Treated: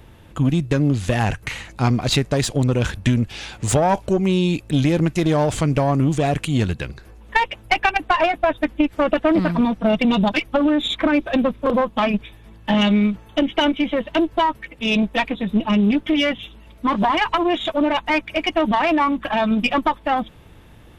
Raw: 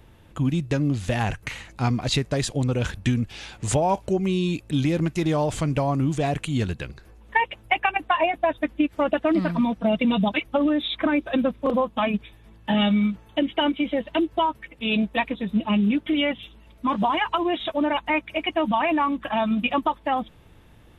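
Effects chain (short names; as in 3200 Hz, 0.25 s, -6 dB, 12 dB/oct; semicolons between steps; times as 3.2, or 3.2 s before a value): one diode to ground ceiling -20.5 dBFS; gain +6 dB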